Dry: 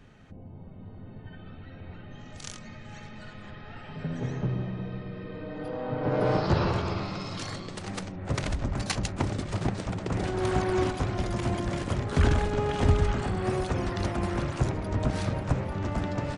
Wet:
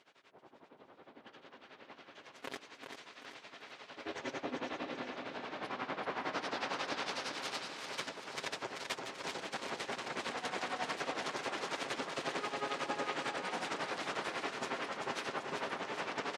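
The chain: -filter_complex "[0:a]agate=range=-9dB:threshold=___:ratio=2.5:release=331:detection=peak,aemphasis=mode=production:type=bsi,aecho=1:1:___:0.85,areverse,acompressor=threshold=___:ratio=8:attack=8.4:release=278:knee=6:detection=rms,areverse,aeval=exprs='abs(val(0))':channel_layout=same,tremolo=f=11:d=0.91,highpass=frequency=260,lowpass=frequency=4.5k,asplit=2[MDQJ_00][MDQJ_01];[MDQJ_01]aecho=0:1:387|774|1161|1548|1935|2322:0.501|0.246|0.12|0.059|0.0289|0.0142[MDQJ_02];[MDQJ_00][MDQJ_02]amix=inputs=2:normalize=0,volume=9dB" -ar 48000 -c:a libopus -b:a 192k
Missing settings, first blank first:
-32dB, 7.4, -35dB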